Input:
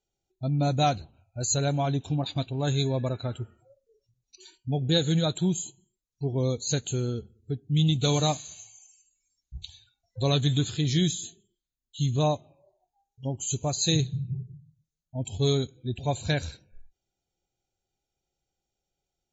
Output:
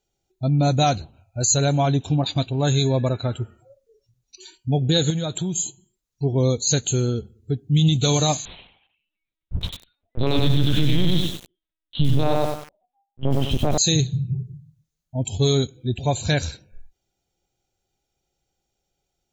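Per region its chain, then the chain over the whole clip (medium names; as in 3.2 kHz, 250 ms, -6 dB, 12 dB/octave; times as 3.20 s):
5.10–5.59 s: compression 5:1, threshold -29 dBFS + band-stop 4 kHz, Q 14
8.45–13.78 s: waveshaping leveller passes 2 + LPC vocoder at 8 kHz pitch kept + bit-crushed delay 95 ms, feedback 35%, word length 7-bit, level -3 dB
whole clip: dynamic bell 5.8 kHz, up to +5 dB, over -47 dBFS, Q 1.9; peak limiter -16 dBFS; trim +7 dB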